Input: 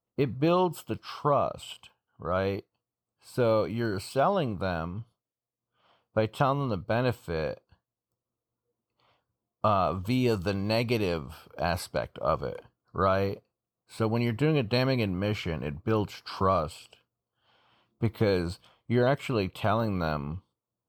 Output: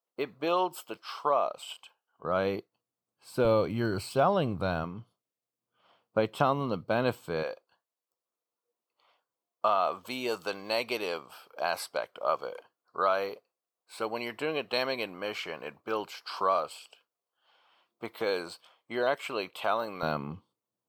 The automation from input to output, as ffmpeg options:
-af "asetnsamples=n=441:p=0,asendcmd='2.24 highpass f 160;3.45 highpass f 60;4.84 highpass f 170;7.43 highpass f 520;20.03 highpass f 180',highpass=500"

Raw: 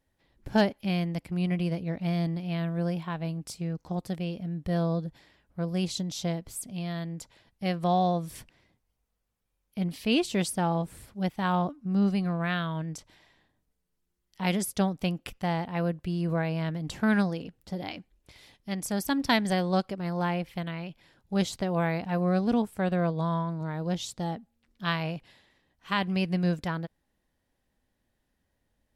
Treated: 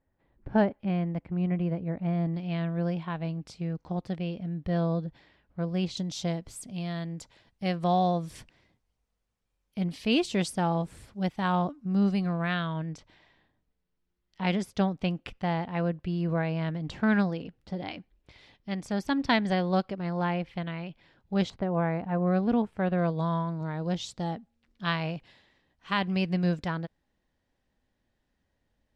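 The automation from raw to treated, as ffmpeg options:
-af "asetnsamples=n=441:p=0,asendcmd='2.34 lowpass f 3900;5.97 lowpass f 7700;12.73 lowpass f 4000;21.5 lowpass f 1600;22.27 lowpass f 2700;22.98 lowpass f 6200',lowpass=1600"

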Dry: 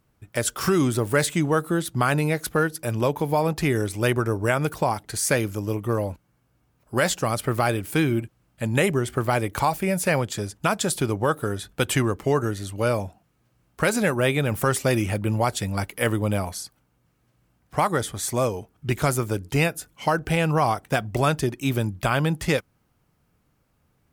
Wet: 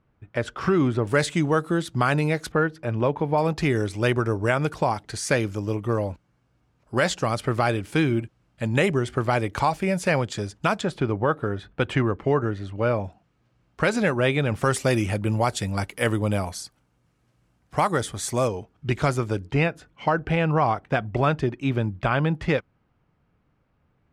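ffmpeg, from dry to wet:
-af "asetnsamples=n=441:p=0,asendcmd='1.07 lowpass f 6400;2.52 lowpass f 2500;3.38 lowpass f 6200;10.81 lowpass f 2500;13.04 lowpass f 5100;14.63 lowpass f 9300;18.48 lowpass f 5100;19.47 lowpass f 2800',lowpass=2500"

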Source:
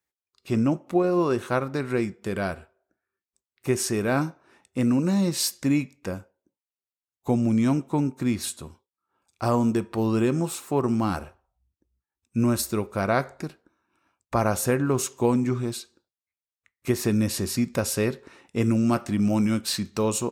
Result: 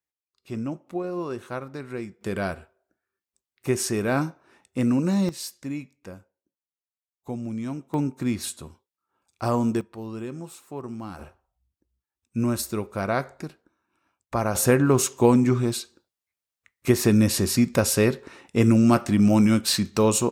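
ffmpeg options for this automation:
-af "asetnsamples=n=441:p=0,asendcmd='2.21 volume volume 0dB;5.29 volume volume -9.5dB;7.94 volume volume -1dB;9.81 volume volume -11.5dB;11.19 volume volume -2dB;14.55 volume volume 4.5dB',volume=0.398"

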